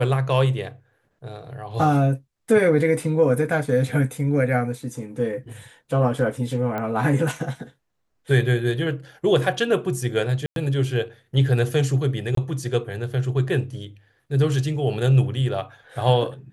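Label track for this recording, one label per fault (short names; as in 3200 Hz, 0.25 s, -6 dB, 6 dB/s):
6.780000	6.780000	pop -16 dBFS
10.460000	10.560000	gap 0.102 s
12.350000	12.370000	gap 23 ms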